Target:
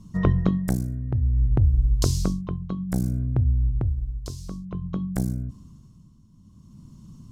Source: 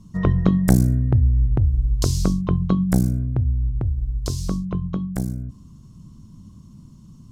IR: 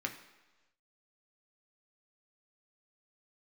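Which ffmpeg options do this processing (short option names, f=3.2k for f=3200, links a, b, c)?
-af "tremolo=f=0.56:d=0.72"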